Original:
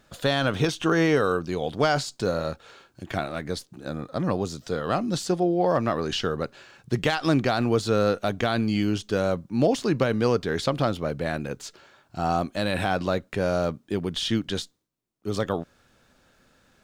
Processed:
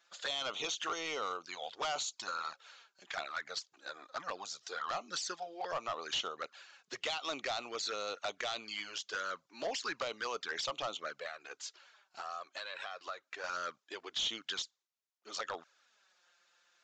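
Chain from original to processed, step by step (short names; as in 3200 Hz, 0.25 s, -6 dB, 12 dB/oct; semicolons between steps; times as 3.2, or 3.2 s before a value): HPF 860 Hz 12 dB/oct; high shelf 2100 Hz +5 dB; harmonic-percussive split harmonic -6 dB; dynamic EQ 1300 Hz, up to +6 dB, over -44 dBFS, Q 2.4; 11.21–13.44 compressor 12:1, threshold -33 dBFS, peak gain reduction 11.5 dB; envelope flanger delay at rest 6 ms, full sweep at -25.5 dBFS; overloaded stage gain 28 dB; downsampling 16000 Hz; gain -3 dB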